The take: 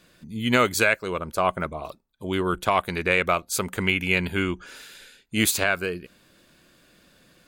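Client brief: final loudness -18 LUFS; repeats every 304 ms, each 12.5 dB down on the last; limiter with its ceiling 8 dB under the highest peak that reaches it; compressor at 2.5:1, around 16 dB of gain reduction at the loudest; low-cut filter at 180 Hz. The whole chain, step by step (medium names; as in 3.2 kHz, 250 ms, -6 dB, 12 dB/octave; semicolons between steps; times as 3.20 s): high-pass 180 Hz; compression 2.5:1, threshold -41 dBFS; peak limiter -26.5 dBFS; feedback delay 304 ms, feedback 24%, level -12.5 dB; trim +22.5 dB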